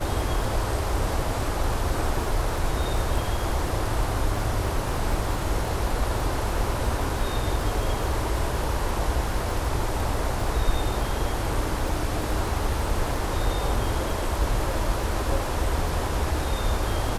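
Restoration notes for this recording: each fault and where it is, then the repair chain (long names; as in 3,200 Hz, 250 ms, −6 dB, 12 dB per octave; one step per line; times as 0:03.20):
surface crackle 39 per second −32 dBFS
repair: click removal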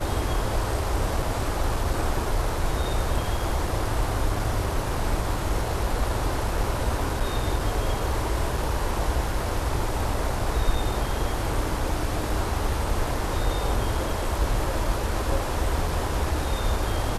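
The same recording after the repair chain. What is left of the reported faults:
none of them is left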